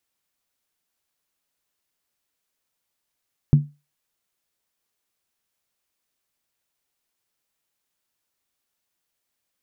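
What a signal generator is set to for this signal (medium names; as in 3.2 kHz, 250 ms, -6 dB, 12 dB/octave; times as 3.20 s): skin hit, lowest mode 146 Hz, decay 0.26 s, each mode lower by 12 dB, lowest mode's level -6.5 dB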